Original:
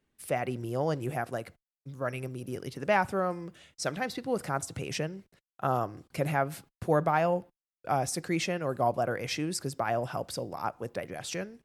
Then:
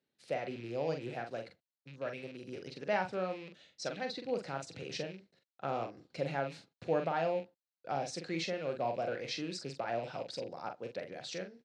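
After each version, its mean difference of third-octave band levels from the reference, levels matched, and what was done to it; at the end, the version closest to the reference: 5.5 dB: rattling part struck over -40 dBFS, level -35 dBFS; speaker cabinet 150–6500 Hz, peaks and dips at 520 Hz +5 dB, 1100 Hz -6 dB, 4100 Hz +9 dB; doubler 43 ms -6.5 dB; gain -8 dB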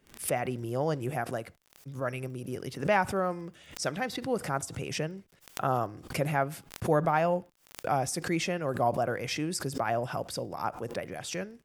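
1.5 dB: crackle 28/s -47 dBFS; notch 4100 Hz, Q 17; backwards sustainer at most 140 dB/s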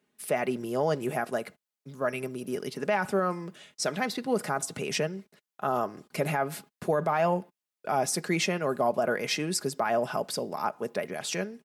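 3.0 dB: HPF 180 Hz 12 dB/oct; comb 4.8 ms, depth 43%; limiter -20 dBFS, peak gain reduction 9 dB; gain +4 dB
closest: second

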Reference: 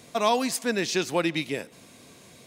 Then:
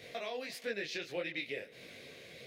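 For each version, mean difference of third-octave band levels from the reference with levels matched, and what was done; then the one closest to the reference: 6.5 dB: compressor 5:1, threshold -37 dBFS, peak gain reduction 17.5 dB; graphic EQ 250/500/1000/2000/4000/8000 Hz -5/+11/-11/+12/+6/-10 dB; detuned doubles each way 54 cents; gain -1 dB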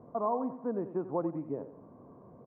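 15.0 dB: compressor 1.5:1, threshold -39 dBFS, peak gain reduction 8 dB; elliptic low-pass 1100 Hz, stop band 80 dB; on a send: feedback echo 89 ms, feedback 38%, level -12.5 dB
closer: first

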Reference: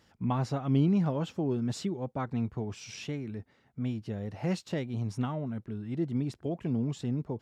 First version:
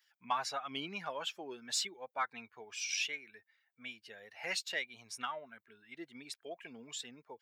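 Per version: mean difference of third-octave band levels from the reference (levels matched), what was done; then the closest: 10.0 dB: per-bin expansion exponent 1.5; HPF 1400 Hz 12 dB/oct; bell 2300 Hz +3.5 dB 0.29 oct; in parallel at -11 dB: soft clip -40 dBFS, distortion -14 dB; on the sum: gain +8.5 dB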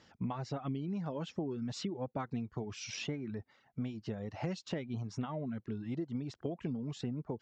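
3.5 dB: low shelf 80 Hz -9.5 dB; compressor 10:1, threshold -36 dBFS, peak gain reduction 14.5 dB; steep low-pass 6900 Hz 36 dB/oct; reverb removal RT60 0.64 s; gain +3 dB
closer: second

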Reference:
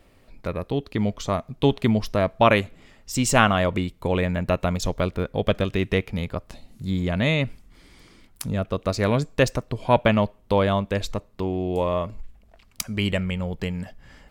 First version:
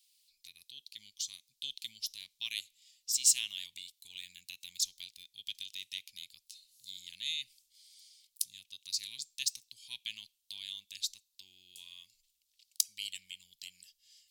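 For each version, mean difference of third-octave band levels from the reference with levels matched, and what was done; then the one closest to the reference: 21.5 dB: inverse Chebyshev high-pass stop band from 1500 Hz, stop band 50 dB; gain +1.5 dB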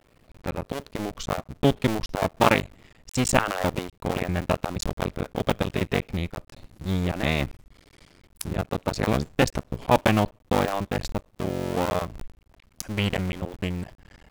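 6.5 dB: cycle switcher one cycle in 2, muted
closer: second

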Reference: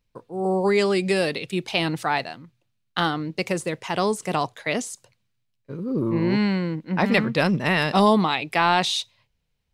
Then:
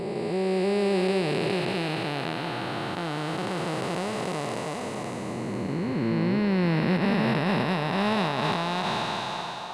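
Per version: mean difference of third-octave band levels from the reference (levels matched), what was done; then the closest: 10.0 dB: time blur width 1.41 s; limiter -18 dBFS, peak gain reduction 6.5 dB; narrowing echo 0.302 s, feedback 79%, band-pass 930 Hz, level -8.5 dB; gain +3 dB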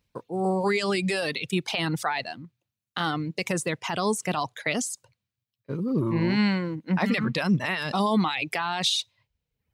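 3.5 dB: dynamic EQ 430 Hz, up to -5 dB, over -33 dBFS, Q 0.8; limiter -17.5 dBFS, peak gain reduction 11 dB; reverb removal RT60 0.82 s; HPF 56 Hz; gain +3.5 dB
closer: second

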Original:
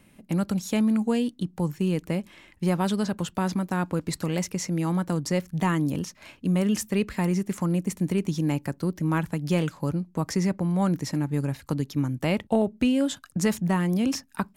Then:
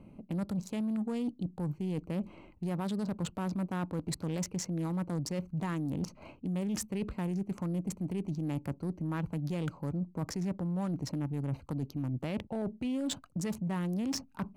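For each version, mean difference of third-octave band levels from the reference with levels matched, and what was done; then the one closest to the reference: 4.5 dB: Wiener smoothing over 25 samples; limiter -23 dBFS, peak gain reduction 11 dB; reverse; compressor 6:1, threshold -36 dBFS, peak gain reduction 10 dB; reverse; soft clip -30.5 dBFS, distortion -23 dB; gain +5.5 dB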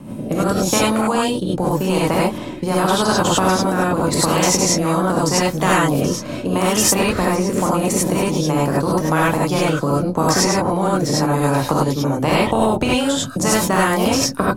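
11.0 dB: graphic EQ 125/250/500/1000/2000 Hz +10/+12/+7/+10/-7 dB; rotary speaker horn 0.85 Hz; non-linear reverb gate 0.12 s rising, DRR -7 dB; spectral compressor 4:1; gain -10 dB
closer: first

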